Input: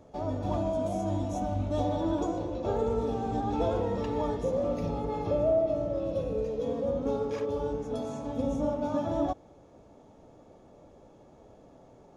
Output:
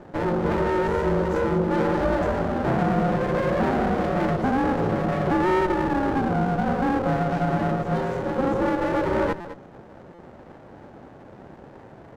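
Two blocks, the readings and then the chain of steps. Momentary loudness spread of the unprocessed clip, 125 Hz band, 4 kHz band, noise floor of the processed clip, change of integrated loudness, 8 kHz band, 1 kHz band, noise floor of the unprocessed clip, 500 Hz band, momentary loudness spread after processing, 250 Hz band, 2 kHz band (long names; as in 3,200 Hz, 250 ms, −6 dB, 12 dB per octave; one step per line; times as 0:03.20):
4 LU, +8.0 dB, +8.0 dB, −46 dBFS, +7.0 dB, can't be measured, +10.5 dB, −56 dBFS, +5.0 dB, 3 LU, +8.5 dB, +21.0 dB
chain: on a send: single-tap delay 209 ms −16 dB
on the sum: ring modulation 270 Hz
high-pass filter 80 Hz
in parallel at +1 dB: brickwall limiter −27 dBFS, peak gain reduction 9 dB
on the sum: soft clipping −20 dBFS, distortion −19 dB
low-pass filter 1,700 Hz 6 dB per octave
buffer that repeats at 0:09.40/0:10.14, samples 256, times 7
windowed peak hold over 17 samples
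level +8 dB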